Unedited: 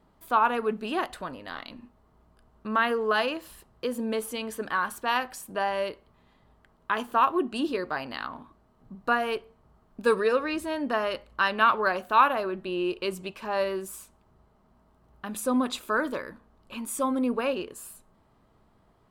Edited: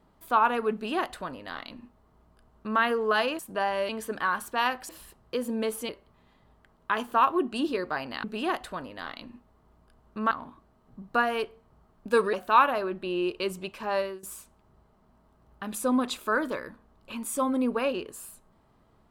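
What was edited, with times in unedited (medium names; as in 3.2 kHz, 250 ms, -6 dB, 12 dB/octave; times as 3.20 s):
0.73–2.80 s: copy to 8.24 s
3.39–4.39 s: swap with 5.39–5.89 s
10.26–11.95 s: delete
13.57–13.85 s: fade out, to -18.5 dB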